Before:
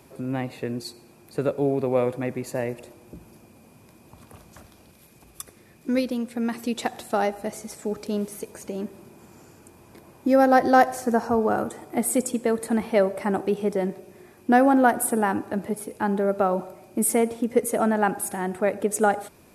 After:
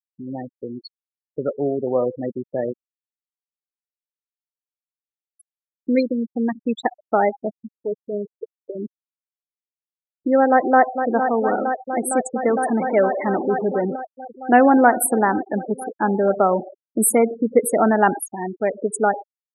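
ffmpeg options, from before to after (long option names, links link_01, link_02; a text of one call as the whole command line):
ffmpeg -i in.wav -filter_complex "[0:a]asettb=1/sr,asplit=3[link_01][link_02][link_03];[link_01]atrim=end=2.684[link_04];[link_02]atrim=start=2.68:end=5.91,asetpts=PTS-STARTPTS,afade=type=in:duration=0.004:curve=qsin,afade=type=out:start_time=3.226:duration=0.004:curve=qsin,aeval=exprs='val(0)*gte(abs(val(0)),0.02)':channel_layout=same[link_05];[link_03]atrim=start=5.906[link_06];[link_04][link_05]acrossfade=duration=0.004:curve1=hsin:curve2=qsin[link_07];[link_07][link_06]acrossfade=duration=0.004:curve1=qsin:curve2=hsin,asettb=1/sr,asplit=3[link_08][link_09][link_10];[link_08]atrim=end=7.794[link_11];[link_09]atrim=start=7.79:end=8.79,asetpts=PTS-STARTPTS,afade=type=in:duration=0.004:curve=qsin,afade=type=out:start_time=0.996:duration=0.004:curve=qsin,equalizer=frequency=230:width=4.9:gain=-14.5[link_12];[link_10]atrim=start=8.786[link_13];[link_11][link_12]acrossfade=duration=0.004:curve1=hsin:curve2=qsin[link_14];[link_14][link_13]acrossfade=duration=0.004:curve1=qsin:curve2=hsin,asplit=2[link_15][link_16];[link_16]afade=type=in:start_time=10.49:duration=0.01,afade=type=out:start_time=11.1:duration=0.01,aecho=0:1:460|920|1380|1840|2300|2760|3220|3680|4140|4600|5060|5520:0.421697|0.358442|0.304676|0.258974|0.220128|0.187109|0.159043|0.135186|0.114908|0.0976721|0.0830212|0.0705681[link_17];[link_15][link_17]amix=inputs=2:normalize=0,asettb=1/sr,asplit=3[link_18][link_19][link_20];[link_18]atrim=end=12.434[link_21];[link_19]atrim=start=12.43:end=13.96,asetpts=PTS-STARTPTS,afade=type=in:duration=0.004:curve=qsin,afade=type=out:start_time=1.526:duration=0.004:curve=qsin,aeval=exprs='val(0)+0.5*0.0708*sgn(val(0))':channel_layout=same[link_22];[link_20]atrim=start=13.956[link_23];[link_21][link_22]acrossfade=duration=0.004:curve1=hsin:curve2=qsin[link_24];[link_24][link_23]acrossfade=duration=0.004:curve1=qsin:curve2=hsin,asettb=1/sr,asplit=3[link_25][link_26][link_27];[link_25]atrim=end=14.524[link_28];[link_26]atrim=start=14.52:end=18.21,asetpts=PTS-STARTPTS,afade=type=in:duration=0.004:curve=qsin,afade=type=out:start_time=3.686:duration=0.004:curve=qsin,acontrast=20[link_29];[link_27]atrim=start=18.206[link_30];[link_28][link_29]acrossfade=duration=0.004:curve1=hsin:curve2=qsin[link_31];[link_31][link_30]acrossfade=duration=0.004:curve1=qsin:curve2=hsin,highpass=frequency=190:poles=1,afftfilt=real='re*gte(hypot(re,im),0.0891)':imag='im*gte(hypot(re,im),0.0891)':win_size=1024:overlap=0.75,dynaudnorm=framelen=660:gausssize=7:maxgain=7dB" out.wav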